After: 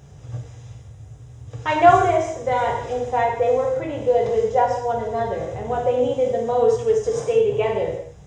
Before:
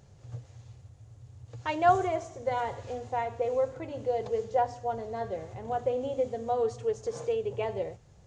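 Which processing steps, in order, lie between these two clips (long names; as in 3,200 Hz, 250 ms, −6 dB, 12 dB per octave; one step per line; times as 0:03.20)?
Butterworth band-reject 4,400 Hz, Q 6.9
reverb whose tail is shaped and stops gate 240 ms falling, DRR −1 dB
level +7.5 dB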